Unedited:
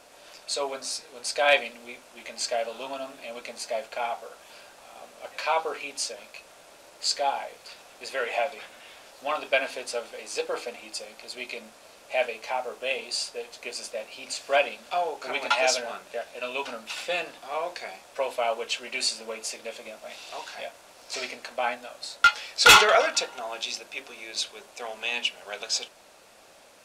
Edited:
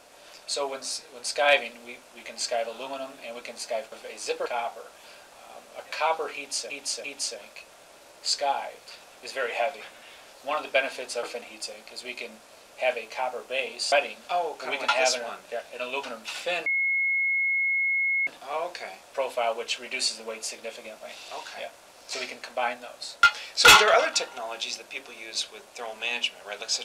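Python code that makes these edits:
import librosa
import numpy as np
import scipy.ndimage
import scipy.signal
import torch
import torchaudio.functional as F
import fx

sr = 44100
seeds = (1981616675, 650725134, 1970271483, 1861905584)

y = fx.edit(x, sr, fx.repeat(start_s=5.82, length_s=0.34, count=3),
    fx.move(start_s=10.01, length_s=0.54, to_s=3.92),
    fx.cut(start_s=13.24, length_s=1.3),
    fx.insert_tone(at_s=17.28, length_s=1.61, hz=2170.0, db=-22.0), tone=tone)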